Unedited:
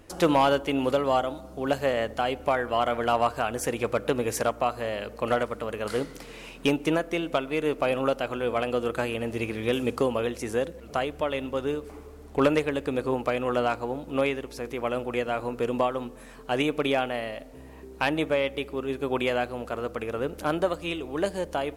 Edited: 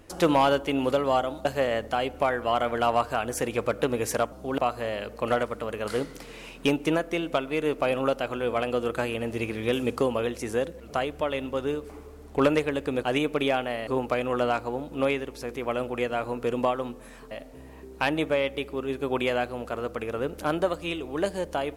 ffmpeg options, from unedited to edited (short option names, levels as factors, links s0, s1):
-filter_complex "[0:a]asplit=7[s0][s1][s2][s3][s4][s5][s6];[s0]atrim=end=1.452[s7];[s1]atrim=start=1.708:end=4.582[s8];[s2]atrim=start=1.448:end=1.712[s9];[s3]atrim=start=4.578:end=13.032[s10];[s4]atrim=start=16.468:end=17.312[s11];[s5]atrim=start=13.028:end=16.472[s12];[s6]atrim=start=17.308[s13];[s7][s8]acrossfade=d=0.004:c1=hsin:c2=hsin[s14];[s14][s9]acrossfade=d=0.004:c1=hsin:c2=hsin[s15];[s15][s10]acrossfade=d=0.004:c1=hsin:c2=hsin[s16];[s16][s11]acrossfade=d=0.004:c1=hsin:c2=hsin[s17];[s17][s12]acrossfade=d=0.004:c1=hsin:c2=hsin[s18];[s18][s13]acrossfade=d=0.004:c1=hsin:c2=hsin"